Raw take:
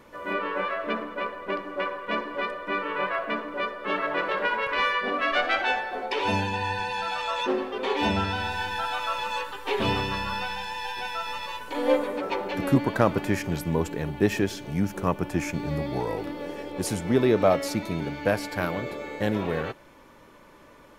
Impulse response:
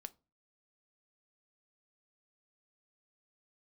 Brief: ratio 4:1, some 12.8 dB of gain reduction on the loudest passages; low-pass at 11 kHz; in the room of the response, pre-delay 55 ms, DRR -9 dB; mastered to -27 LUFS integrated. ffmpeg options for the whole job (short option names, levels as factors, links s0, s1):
-filter_complex "[0:a]lowpass=11000,acompressor=threshold=0.0282:ratio=4,asplit=2[s0][s1];[1:a]atrim=start_sample=2205,adelay=55[s2];[s1][s2]afir=irnorm=-1:irlink=0,volume=5.31[s3];[s0][s3]amix=inputs=2:normalize=0,volume=0.75"